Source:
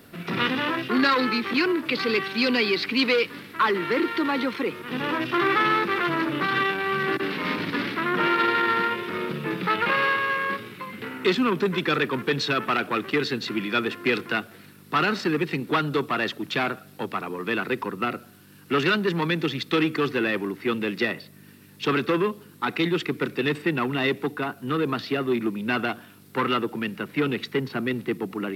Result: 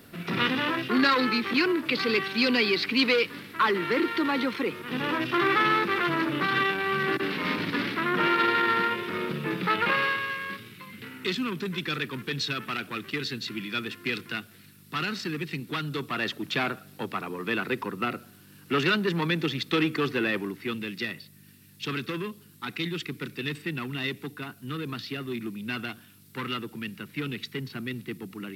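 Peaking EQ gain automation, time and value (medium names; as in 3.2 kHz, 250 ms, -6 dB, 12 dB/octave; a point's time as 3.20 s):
peaking EQ 660 Hz 2.8 oct
9.90 s -2.5 dB
10.40 s -14 dB
15.85 s -14 dB
16.35 s -4 dB
20.36 s -4 dB
20.90 s -15 dB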